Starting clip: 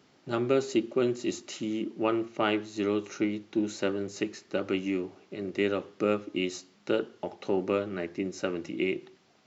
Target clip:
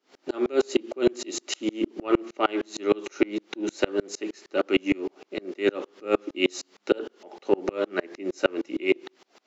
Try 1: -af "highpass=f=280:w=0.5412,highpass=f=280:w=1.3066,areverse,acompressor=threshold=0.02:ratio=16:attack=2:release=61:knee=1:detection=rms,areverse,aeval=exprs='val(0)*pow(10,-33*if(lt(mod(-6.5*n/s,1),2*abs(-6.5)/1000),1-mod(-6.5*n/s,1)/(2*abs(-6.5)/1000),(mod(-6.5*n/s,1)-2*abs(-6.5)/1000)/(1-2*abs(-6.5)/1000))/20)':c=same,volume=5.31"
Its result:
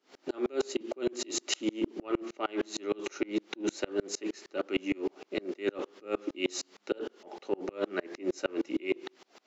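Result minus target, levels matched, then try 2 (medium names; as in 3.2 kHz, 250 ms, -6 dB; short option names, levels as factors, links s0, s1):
compression: peak gain reduction +10 dB
-af "highpass=f=280:w=0.5412,highpass=f=280:w=1.3066,areverse,acompressor=threshold=0.0668:ratio=16:attack=2:release=61:knee=1:detection=rms,areverse,aeval=exprs='val(0)*pow(10,-33*if(lt(mod(-6.5*n/s,1),2*abs(-6.5)/1000),1-mod(-6.5*n/s,1)/(2*abs(-6.5)/1000),(mod(-6.5*n/s,1)-2*abs(-6.5)/1000)/(1-2*abs(-6.5)/1000))/20)':c=same,volume=5.31"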